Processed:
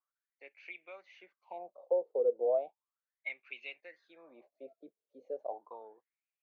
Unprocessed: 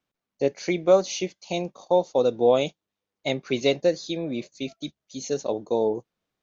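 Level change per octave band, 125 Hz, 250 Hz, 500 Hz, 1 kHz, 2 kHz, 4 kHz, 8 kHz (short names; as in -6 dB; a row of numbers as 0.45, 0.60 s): under -40 dB, -28.0 dB, -13.0 dB, -15.5 dB, -10.0 dB, under -25 dB, n/a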